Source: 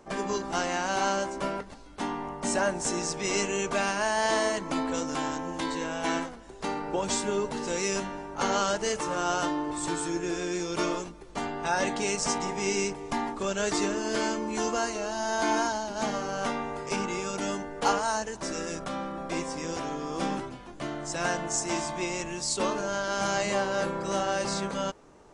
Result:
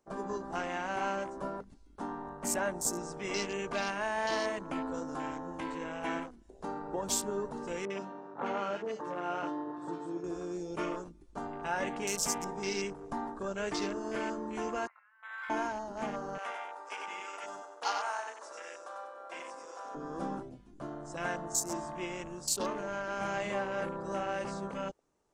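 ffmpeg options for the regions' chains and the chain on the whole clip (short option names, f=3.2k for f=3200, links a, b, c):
-filter_complex "[0:a]asettb=1/sr,asplit=3[a][b][c];[a]atrim=end=7.854[d];[b]atrim=start=7.85:end=10.24,asetpts=PTS-STARTPTS,afade=t=in:d=0.004:c=qsin,afade=t=out:st=2.386:d=0.004:c=qsin,highpass=170,lowpass=3.8k,acrossover=split=1500[e][f];[f]adelay=50[g];[e][g]amix=inputs=2:normalize=0,atrim=end_sample=105399[h];[c]atrim=start=10.236[i];[d][h]acrossfade=d=0.004:c1=hsin:c2=qsin[j];[j][i]acrossfade=d=0.004:c1=qsin:c2=hsin,asettb=1/sr,asplit=3[k][l][m];[k]atrim=end=14.874[n];[l]atrim=start=14.87:end=15.5,asetpts=PTS-STARTPTS,afade=t=in:d=0.004:c=qsin,afade=t=out:st=0.626:d=0.004:c=qsin,asuperpass=centerf=1600:order=8:qfactor=1.4,volume=30dB,asoftclip=hard,volume=-30dB[o];[m]atrim=start=15.496[p];[n][o]acrossfade=d=0.004:c1=hsin:c2=qsin[q];[q][p]acrossfade=d=0.004:c1=qsin:c2=hsin,asettb=1/sr,asplit=3[r][s][t];[r]atrim=end=16.384[u];[s]atrim=start=16.38:end=19.95,asetpts=PTS-STARTPTS,afade=t=in:d=0.004:c=qsin,afade=t=out:st=3.566:d=0.004:c=qsin,highpass=770,aecho=1:1:95|190|285|380|475:0.562|0.247|0.109|0.0479|0.0211,atrim=end_sample=157437[v];[t]atrim=start=19.946[w];[u][v]acrossfade=d=0.004:c1=hsin:c2=qsin[x];[x][w]acrossfade=d=0.004:c1=qsin:c2=hsin,afwtdn=0.0158,highshelf=f=5.6k:g=10.5,volume=-6.5dB"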